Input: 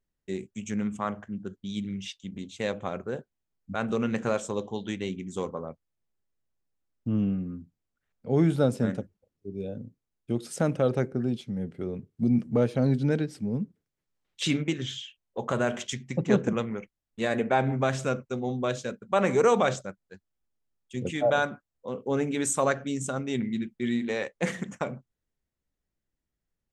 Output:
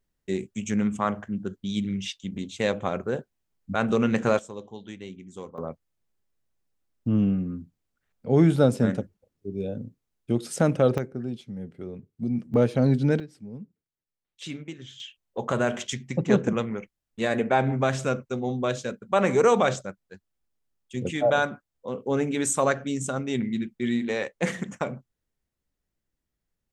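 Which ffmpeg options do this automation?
-af "asetnsamples=n=441:p=0,asendcmd='4.39 volume volume -7.5dB;5.58 volume volume 4dB;10.98 volume volume -4dB;12.54 volume volume 3dB;13.2 volume volume -10dB;15 volume volume 2dB',volume=5dB"

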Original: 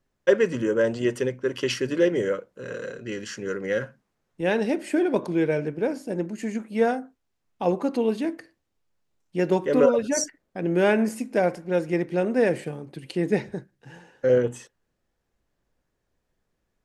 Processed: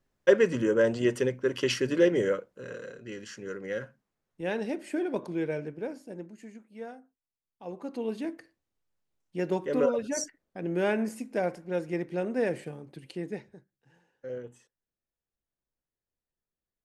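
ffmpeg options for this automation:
-af "volume=11dB,afade=t=out:st=2.29:d=0.55:silence=0.473151,afade=t=out:st=5.55:d=1.06:silence=0.266073,afade=t=in:st=7.62:d=0.62:silence=0.237137,afade=t=out:st=12.99:d=0.47:silence=0.266073"

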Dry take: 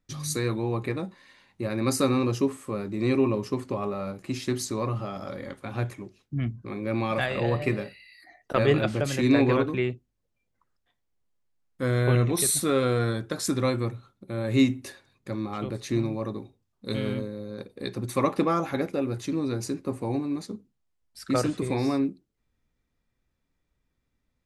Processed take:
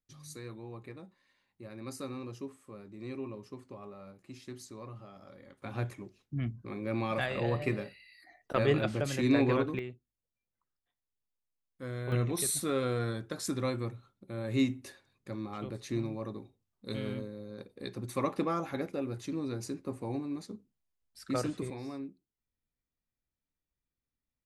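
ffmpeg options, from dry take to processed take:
-af "asetnsamples=n=441:p=0,asendcmd='5.62 volume volume -5.5dB;9.79 volume volume -14dB;12.12 volume volume -7.5dB;21.7 volume volume -15.5dB',volume=-17dB"

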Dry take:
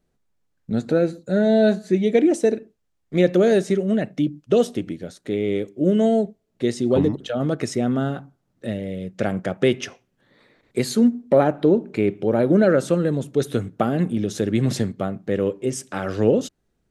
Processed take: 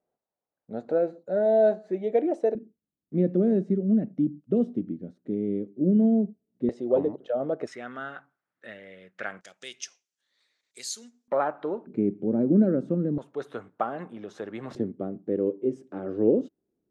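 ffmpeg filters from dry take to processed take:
-af "asetnsamples=n=441:p=0,asendcmd='2.55 bandpass f 230;6.69 bandpass f 590;7.67 bandpass f 1600;9.41 bandpass f 6200;11.28 bandpass f 1100;11.87 bandpass f 240;13.18 bandpass f 1000;14.75 bandpass f 330',bandpass=f=670:t=q:w=2:csg=0"

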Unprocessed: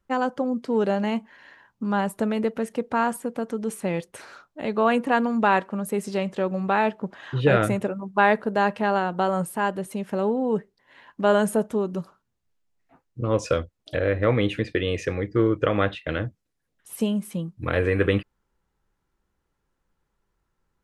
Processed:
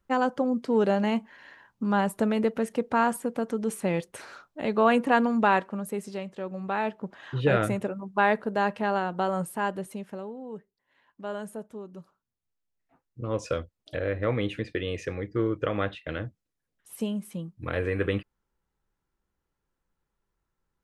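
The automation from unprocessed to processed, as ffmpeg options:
-af "volume=16dB,afade=t=out:st=5.24:d=1.07:silence=0.298538,afade=t=in:st=6.31:d=0.95:silence=0.446684,afade=t=out:st=9.8:d=0.47:silence=0.266073,afade=t=in:st=11.86:d=1.7:silence=0.334965"

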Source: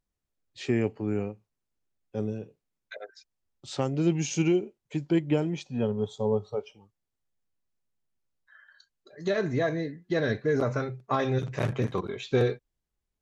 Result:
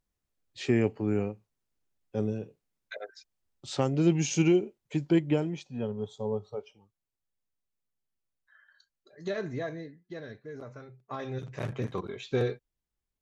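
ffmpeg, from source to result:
-af "volume=14dB,afade=t=out:st=5.11:d=0.53:silence=0.473151,afade=t=out:st=9.28:d=1.02:silence=0.266073,afade=t=in:st=10.81:d=1.2:silence=0.223872"

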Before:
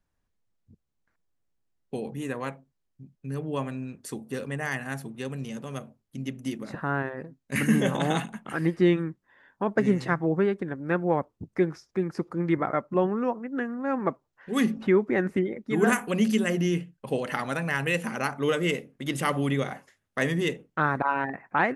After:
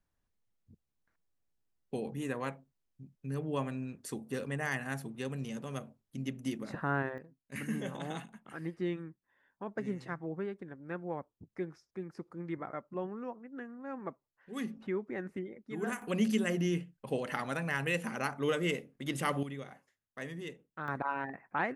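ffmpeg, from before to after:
-af "asetnsamples=n=441:p=0,asendcmd='7.18 volume volume -14dB;16.02 volume volume -6dB;19.43 volume volume -16dB;20.88 volume volume -9dB',volume=-4dB"

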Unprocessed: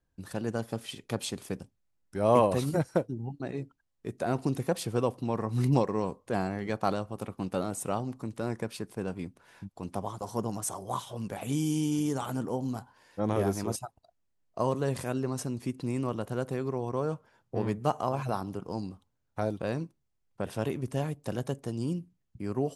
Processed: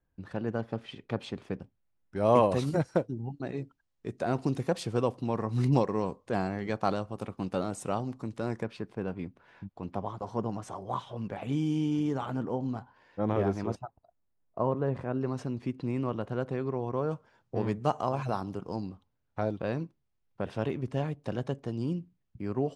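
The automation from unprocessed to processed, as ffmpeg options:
-af "asetnsamples=n=441:p=0,asendcmd='2.16 lowpass f 6600;8.63 lowpass f 3000;13.75 lowpass f 1500;15.21 lowpass f 3300;17.11 lowpass f 6500;18.76 lowpass f 4000',lowpass=2.6k"

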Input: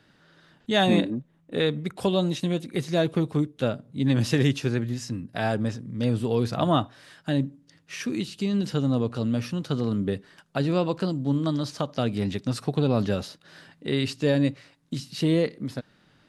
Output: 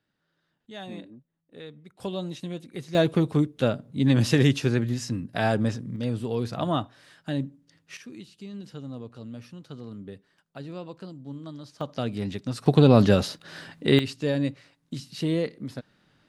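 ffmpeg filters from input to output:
-af "asetnsamples=n=441:p=0,asendcmd='2 volume volume -8.5dB;2.95 volume volume 2dB;5.96 volume volume -4dB;7.97 volume volume -14dB;11.81 volume volume -3.5dB;12.66 volume volume 7dB;13.99 volume volume -3.5dB',volume=-18.5dB"

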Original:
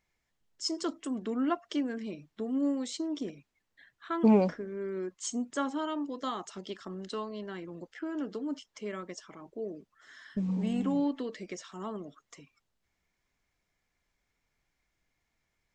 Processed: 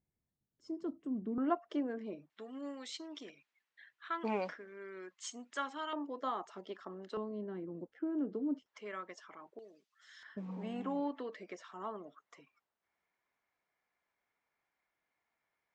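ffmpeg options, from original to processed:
-af "asetnsamples=n=441:p=0,asendcmd='1.38 bandpass f 620;2.3 bandpass f 2100;5.93 bandpass f 810;7.17 bandpass f 290;8.66 bandpass f 1300;9.59 bandpass f 4200;10.23 bandpass f 1000',bandpass=f=140:t=q:w=0.81:csg=0"

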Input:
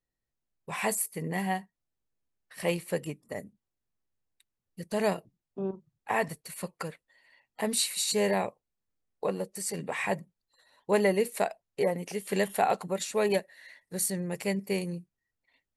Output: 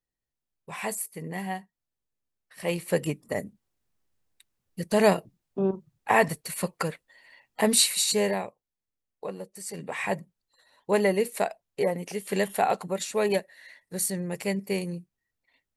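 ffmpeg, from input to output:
-af "volume=14dB,afade=t=in:st=2.62:d=0.44:silence=0.316228,afade=t=out:st=7.79:d=0.68:silence=0.237137,afade=t=in:st=9.59:d=0.53:silence=0.473151"

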